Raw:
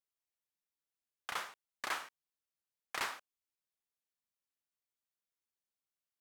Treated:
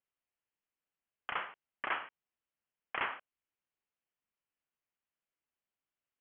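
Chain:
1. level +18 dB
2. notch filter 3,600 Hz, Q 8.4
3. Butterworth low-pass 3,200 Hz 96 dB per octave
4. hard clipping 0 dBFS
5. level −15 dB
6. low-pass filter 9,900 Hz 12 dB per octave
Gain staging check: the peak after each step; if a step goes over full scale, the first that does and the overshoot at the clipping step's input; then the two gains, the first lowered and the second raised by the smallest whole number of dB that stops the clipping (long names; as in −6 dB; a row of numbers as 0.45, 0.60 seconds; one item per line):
−5.0, −4.5, −4.5, −4.5, −19.5, −19.5 dBFS
no step passes full scale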